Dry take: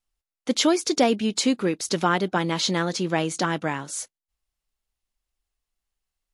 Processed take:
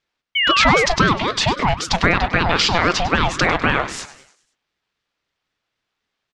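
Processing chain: in parallel at -2 dB: negative-ratio compressor -26 dBFS, ratio -0.5; on the sum: painted sound fall, 0.35–0.86, 1200–2700 Hz -24 dBFS; BPF 420–4200 Hz; air absorption 64 m; on a send: frequency-shifting echo 0.1 s, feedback 50%, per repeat +79 Hz, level -15 dB; on the sum: maximiser +11 dB; ring modulator with a swept carrier 610 Hz, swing 45%, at 3.8 Hz

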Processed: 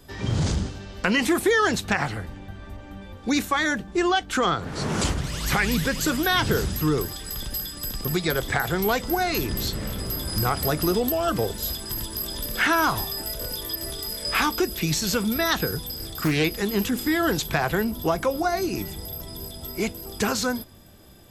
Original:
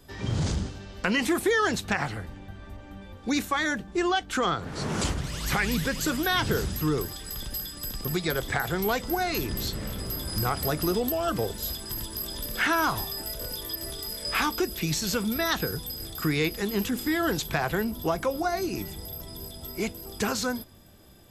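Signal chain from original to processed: 15.83–16.44 Doppler distortion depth 0.35 ms; gain +3.5 dB

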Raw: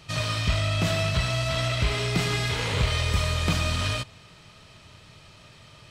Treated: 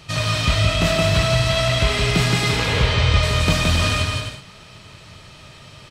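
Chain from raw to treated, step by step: 2.56–3.23 LPF 5100 Hz 12 dB/oct; bouncing-ball echo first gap 0.17 s, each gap 0.6×, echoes 5; gain +5.5 dB

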